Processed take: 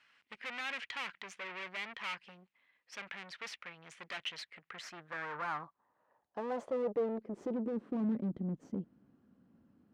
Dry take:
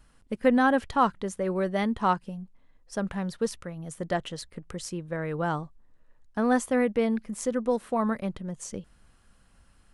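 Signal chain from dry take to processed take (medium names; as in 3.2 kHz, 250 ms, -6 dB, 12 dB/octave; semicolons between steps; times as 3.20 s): Chebyshev band-pass 110–5800 Hz, order 2; valve stage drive 39 dB, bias 0.7; band-pass sweep 2.3 kHz -> 260 Hz, 4.50–7.96 s; trim +12 dB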